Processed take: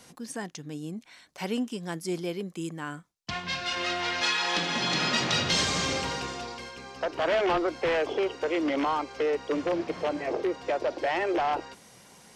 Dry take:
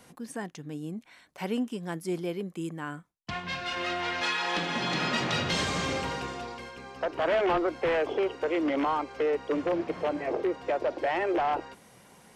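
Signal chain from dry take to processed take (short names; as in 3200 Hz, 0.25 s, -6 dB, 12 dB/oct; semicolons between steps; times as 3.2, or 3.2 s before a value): bell 5500 Hz +8 dB 1.5 oct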